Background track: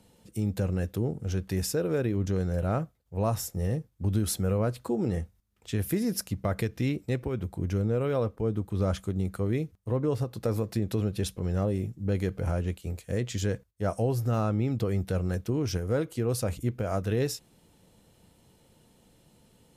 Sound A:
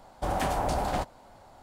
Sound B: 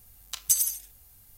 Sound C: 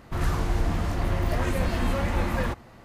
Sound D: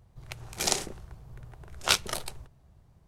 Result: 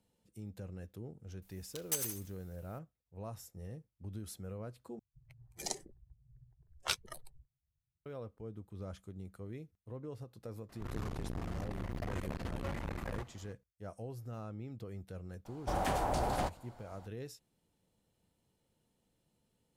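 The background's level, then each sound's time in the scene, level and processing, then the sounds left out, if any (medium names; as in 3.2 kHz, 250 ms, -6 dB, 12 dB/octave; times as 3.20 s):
background track -17.5 dB
1.42 s: add B -13.5 dB + block-companded coder 3-bit
4.99 s: replace with D -9 dB + expander on every frequency bin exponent 2
10.69 s: add C -10 dB + transformer saturation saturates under 310 Hz
15.45 s: add A -5 dB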